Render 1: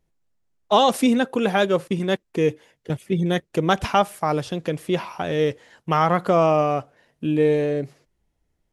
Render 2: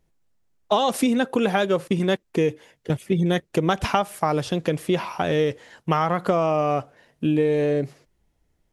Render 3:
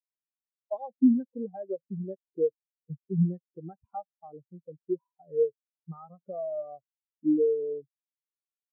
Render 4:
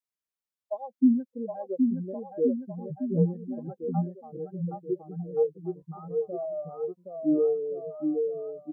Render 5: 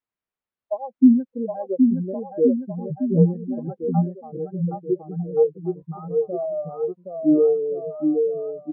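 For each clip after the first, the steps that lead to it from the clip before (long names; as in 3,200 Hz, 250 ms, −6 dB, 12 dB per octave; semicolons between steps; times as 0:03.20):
downward compressor 10 to 1, threshold −20 dBFS, peak gain reduction 9 dB; level +3.5 dB
every bin expanded away from the loudest bin 4 to 1; level −7.5 dB
bouncing-ball delay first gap 770 ms, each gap 0.85×, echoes 5
high-frequency loss of the air 420 metres; level +8 dB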